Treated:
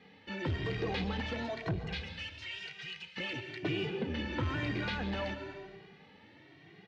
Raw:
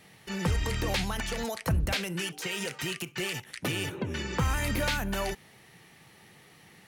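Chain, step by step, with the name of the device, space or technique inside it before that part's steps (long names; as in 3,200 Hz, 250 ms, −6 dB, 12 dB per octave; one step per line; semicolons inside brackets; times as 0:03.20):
0:01.78–0:03.17: guitar amp tone stack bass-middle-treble 10-0-10
dense smooth reverb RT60 1.5 s, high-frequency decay 0.9×, pre-delay 110 ms, DRR 8.5 dB
barber-pole flanger into a guitar amplifier (barber-pole flanger 2 ms +1 Hz; soft clipping −28.5 dBFS, distortion −14 dB; loudspeaker in its box 78–4,000 Hz, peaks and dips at 89 Hz +4 dB, 300 Hz +8 dB, 430 Hz +4 dB, 1,200 Hz −4 dB)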